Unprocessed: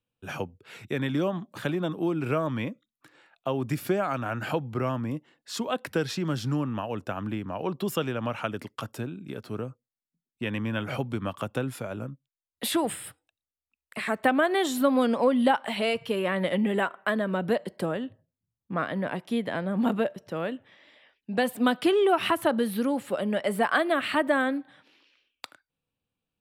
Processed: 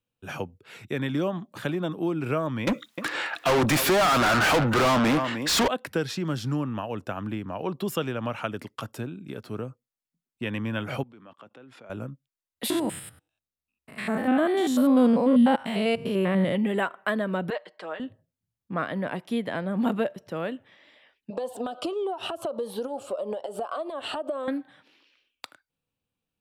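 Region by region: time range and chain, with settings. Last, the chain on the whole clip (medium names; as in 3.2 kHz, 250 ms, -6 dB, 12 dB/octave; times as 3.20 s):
2.67–5.68 s: delay 306 ms -21 dB + overdrive pedal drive 37 dB, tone 6 kHz, clips at -14.5 dBFS
11.03–11.90 s: level held to a coarse grid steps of 23 dB + band-pass 220–3800 Hz
12.70–16.55 s: spectrogram pixelated in time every 100 ms + peaking EQ 140 Hz +9 dB 2.6 oct
17.50–18.00 s: high-pass 790 Hz + distance through air 140 m + comb 6.5 ms, depth 59%
21.30–24.48 s: FFT filter 100 Hz 0 dB, 170 Hz -12 dB, 550 Hz +14 dB, 1.2 kHz +9 dB, 2 kHz -13 dB, 2.8 kHz +1 dB, 7.7 kHz +2 dB, 14 kHz -12 dB + compression 12:1, threshold -25 dBFS + Shepard-style phaser falling 1.6 Hz
whole clip: none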